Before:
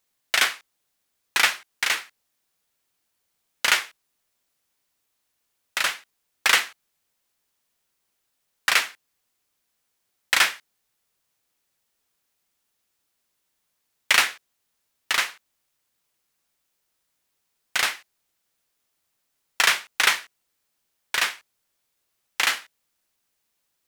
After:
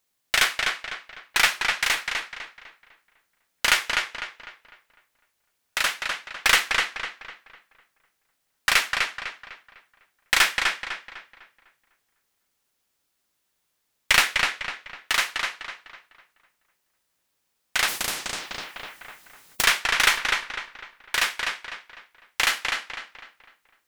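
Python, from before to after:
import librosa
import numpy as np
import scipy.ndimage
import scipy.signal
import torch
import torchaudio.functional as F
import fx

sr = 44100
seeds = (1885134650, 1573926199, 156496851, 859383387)

y = fx.tracing_dist(x, sr, depth_ms=0.024)
y = fx.echo_filtered(y, sr, ms=251, feedback_pct=39, hz=4300.0, wet_db=-3.5)
y = fx.spectral_comp(y, sr, ratio=4.0, at=(17.87, 19.63), fade=0.02)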